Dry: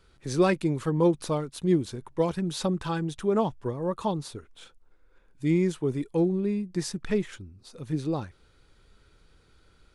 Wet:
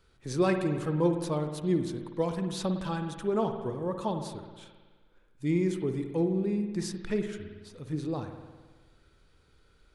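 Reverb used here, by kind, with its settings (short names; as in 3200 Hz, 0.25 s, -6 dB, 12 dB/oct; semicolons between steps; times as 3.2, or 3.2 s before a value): spring tank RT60 1.4 s, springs 53 ms, chirp 45 ms, DRR 6 dB; gain -4 dB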